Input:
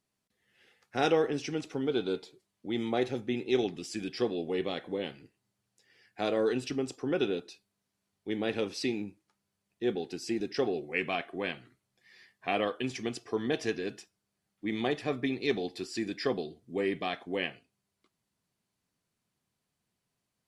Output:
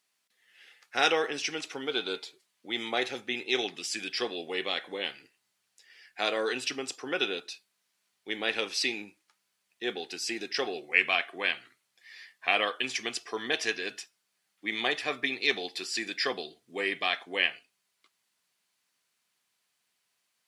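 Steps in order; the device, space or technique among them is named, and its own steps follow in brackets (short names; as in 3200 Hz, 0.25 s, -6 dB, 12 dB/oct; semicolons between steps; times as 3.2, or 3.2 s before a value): filter by subtraction (in parallel: LPF 2200 Hz 12 dB/oct + phase invert); on the sum: gain +7.5 dB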